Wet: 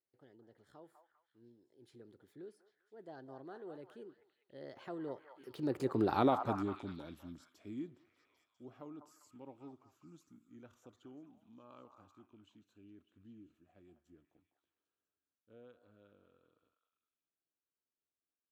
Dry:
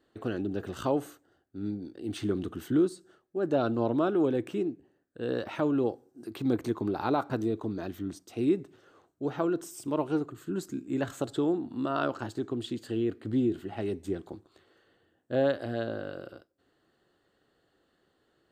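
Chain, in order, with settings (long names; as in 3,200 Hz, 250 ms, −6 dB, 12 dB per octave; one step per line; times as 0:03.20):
source passing by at 0:06.11, 44 m/s, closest 8.9 metres
echo through a band-pass that steps 199 ms, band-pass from 970 Hz, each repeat 0.7 octaves, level −5 dB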